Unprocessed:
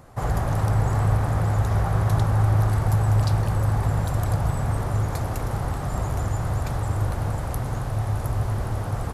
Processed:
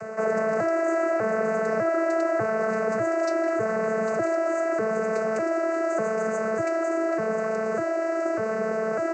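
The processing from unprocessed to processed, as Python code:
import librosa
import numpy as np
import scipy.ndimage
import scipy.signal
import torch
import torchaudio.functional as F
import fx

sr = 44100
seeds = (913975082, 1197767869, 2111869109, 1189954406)

y = fx.vocoder_arp(x, sr, chord='bare fifth', root=57, every_ms=598)
y = fx.low_shelf(y, sr, hz=130.0, db=-5.5)
y = fx.fixed_phaser(y, sr, hz=930.0, stages=6)
y = fx.env_flatten(y, sr, amount_pct=50)
y = F.gain(torch.from_numpy(y), 2.5).numpy()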